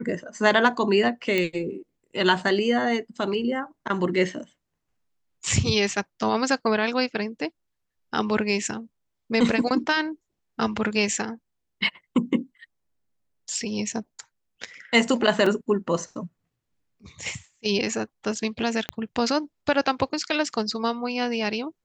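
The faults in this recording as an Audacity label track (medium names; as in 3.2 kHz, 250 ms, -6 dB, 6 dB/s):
1.380000	1.380000	pop -11 dBFS
15.460000	15.460000	dropout 3.9 ms
18.890000	18.890000	pop -12 dBFS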